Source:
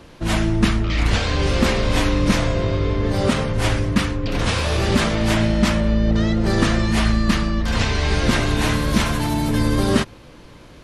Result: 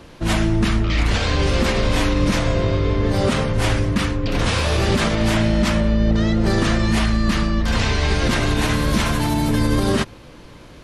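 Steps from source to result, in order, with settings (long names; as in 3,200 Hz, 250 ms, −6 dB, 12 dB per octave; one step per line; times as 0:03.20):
brickwall limiter −10 dBFS, peak gain reduction 6.5 dB
level +1.5 dB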